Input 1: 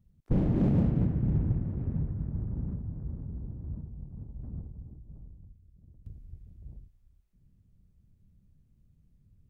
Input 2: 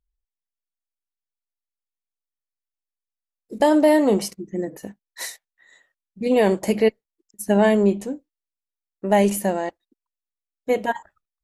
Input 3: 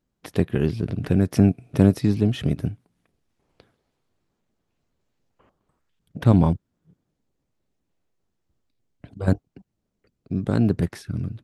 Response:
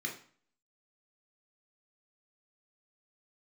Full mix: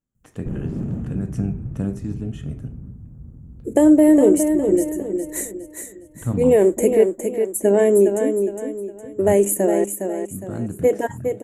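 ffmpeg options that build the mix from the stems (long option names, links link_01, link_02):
-filter_complex "[0:a]crystalizer=i=1:c=0,adelay=150,volume=-6.5dB,asplit=2[link_01][link_02];[link_02]volume=-4dB[link_03];[1:a]firequalizer=gain_entry='entry(220,0);entry(310,14);entry(860,-4);entry(2000,0);entry(5300,-13);entry(7500,2)':delay=0.05:min_phase=1,acompressor=threshold=-9dB:ratio=2,adelay=150,volume=-2.5dB,asplit=2[link_04][link_05];[link_05]volume=-6.5dB[link_06];[2:a]lowpass=9400,volume=-11.5dB,asplit=2[link_07][link_08];[link_08]volume=-6.5dB[link_09];[3:a]atrim=start_sample=2205[link_10];[link_03][link_09]amix=inputs=2:normalize=0[link_11];[link_11][link_10]afir=irnorm=-1:irlink=0[link_12];[link_06]aecho=0:1:411|822|1233|1644|2055:1|0.36|0.13|0.0467|0.0168[link_13];[link_01][link_04][link_07][link_12][link_13]amix=inputs=5:normalize=0,highshelf=frequency=5700:width_type=q:width=3:gain=6"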